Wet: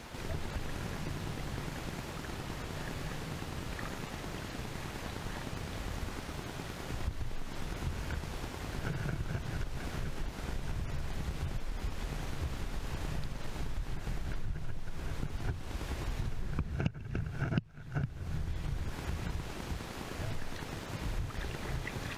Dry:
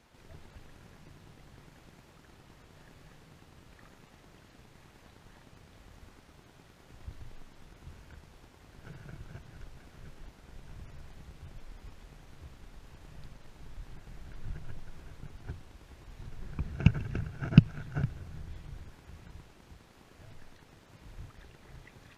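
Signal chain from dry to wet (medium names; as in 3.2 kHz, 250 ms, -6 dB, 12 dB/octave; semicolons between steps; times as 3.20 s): compression 10:1, threshold -47 dBFS, peak gain reduction 35.5 dB; trim +16 dB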